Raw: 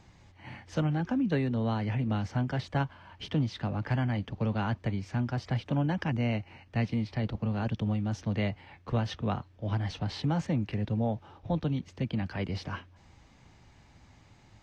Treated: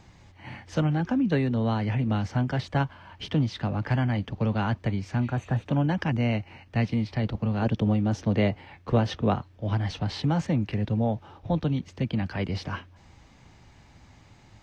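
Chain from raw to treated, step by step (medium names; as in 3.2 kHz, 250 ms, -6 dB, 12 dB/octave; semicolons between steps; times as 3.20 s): 5.24–5.61 s: spectral replace 1.9–6 kHz; 7.61–9.35 s: dynamic bell 410 Hz, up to +6 dB, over -45 dBFS, Q 0.7; trim +4 dB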